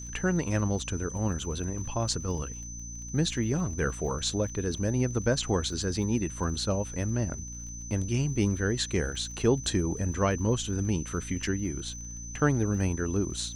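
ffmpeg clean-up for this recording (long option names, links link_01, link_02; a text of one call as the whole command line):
ffmpeg -i in.wav -af "adeclick=threshold=4,bandreject=frequency=58.4:width_type=h:width=4,bandreject=frequency=116.8:width_type=h:width=4,bandreject=frequency=175.2:width_type=h:width=4,bandreject=frequency=233.6:width_type=h:width=4,bandreject=frequency=292:width_type=h:width=4,bandreject=frequency=6100:width=30,agate=range=-21dB:threshold=-32dB" out.wav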